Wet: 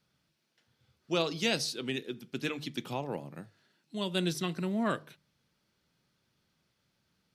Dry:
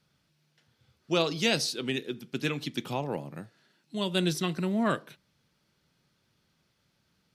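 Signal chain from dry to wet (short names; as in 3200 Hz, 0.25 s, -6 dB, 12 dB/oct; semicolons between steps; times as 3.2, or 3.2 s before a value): notches 50/100/150 Hz; gain -3.5 dB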